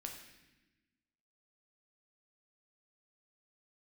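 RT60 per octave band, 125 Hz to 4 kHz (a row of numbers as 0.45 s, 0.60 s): 1.5 s, 1.7 s, 1.1 s, 0.95 s, 1.2 s, 1.0 s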